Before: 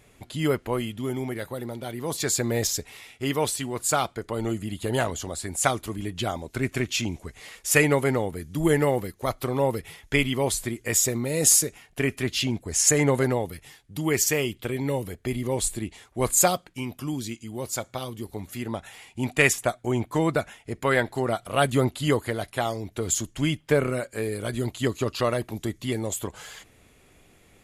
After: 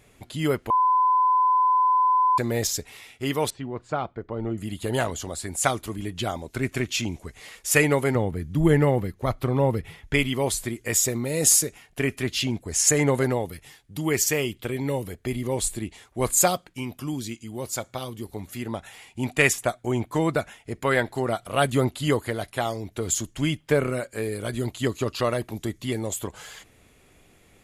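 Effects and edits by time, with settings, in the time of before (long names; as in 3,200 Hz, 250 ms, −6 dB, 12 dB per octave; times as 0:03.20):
0:00.70–0:02.38: beep over 1,010 Hz −16.5 dBFS
0:03.50–0:04.58: head-to-tape spacing loss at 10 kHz 41 dB
0:08.15–0:10.14: bass and treble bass +7 dB, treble −8 dB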